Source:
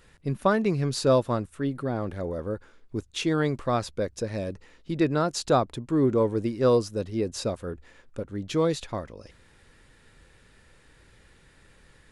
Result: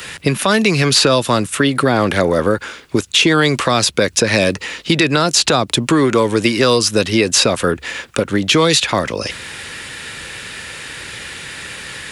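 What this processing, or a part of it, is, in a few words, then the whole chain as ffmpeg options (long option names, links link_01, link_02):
mastering chain: -filter_complex "[0:a]highpass=88,equalizer=frequency=2700:width_type=o:width=0.82:gain=4,acrossover=split=110|330|800|3200[link_01][link_02][link_03][link_04][link_05];[link_01]acompressor=threshold=-53dB:ratio=4[link_06];[link_02]acompressor=threshold=-35dB:ratio=4[link_07];[link_03]acompressor=threshold=-37dB:ratio=4[link_08];[link_04]acompressor=threshold=-40dB:ratio=4[link_09];[link_05]acompressor=threshold=-43dB:ratio=4[link_10];[link_06][link_07][link_08][link_09][link_10]amix=inputs=5:normalize=0,acompressor=threshold=-34dB:ratio=2,tiltshelf=frequency=1100:gain=-5.5,alimiter=level_in=27.5dB:limit=-1dB:release=50:level=0:latency=1,volume=-1.5dB"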